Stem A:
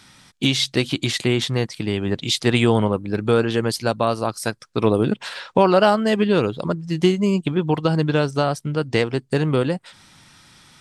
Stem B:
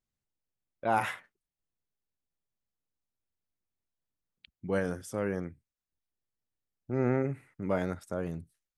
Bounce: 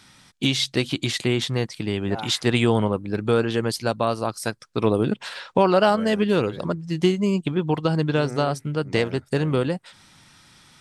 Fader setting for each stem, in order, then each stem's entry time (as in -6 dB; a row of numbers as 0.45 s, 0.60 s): -2.5 dB, -6.5 dB; 0.00 s, 1.25 s